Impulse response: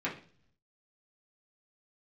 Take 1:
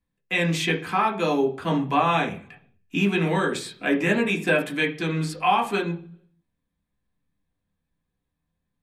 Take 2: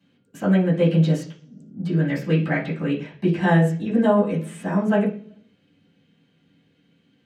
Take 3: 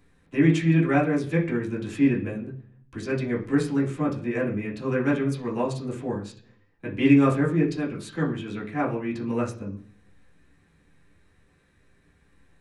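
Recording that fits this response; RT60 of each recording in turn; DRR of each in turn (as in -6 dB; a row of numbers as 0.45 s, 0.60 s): 3; 0.45 s, 0.45 s, 0.45 s; 0.0 dB, -14.5 dB, -7.0 dB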